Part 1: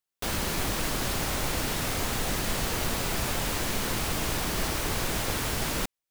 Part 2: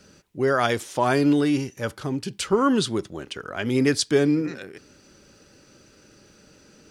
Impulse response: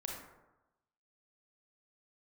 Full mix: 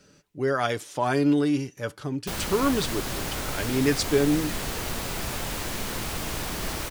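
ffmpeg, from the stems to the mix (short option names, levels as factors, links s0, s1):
-filter_complex "[0:a]adelay=2050,volume=0.794[s0];[1:a]aecho=1:1:6.9:0.35,volume=0.596[s1];[s0][s1]amix=inputs=2:normalize=0"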